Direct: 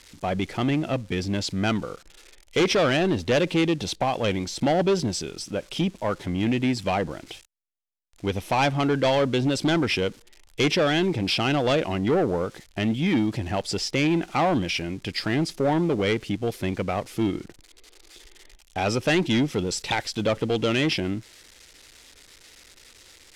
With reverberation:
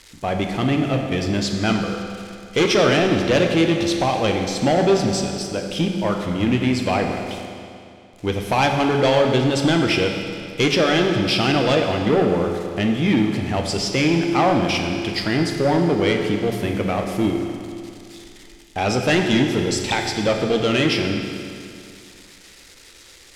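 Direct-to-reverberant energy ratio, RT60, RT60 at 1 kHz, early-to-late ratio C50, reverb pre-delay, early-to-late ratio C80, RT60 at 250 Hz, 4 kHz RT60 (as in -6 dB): 2.5 dB, 2.5 s, 2.5 s, 4.0 dB, 12 ms, 5.0 dB, 2.5 s, 2.3 s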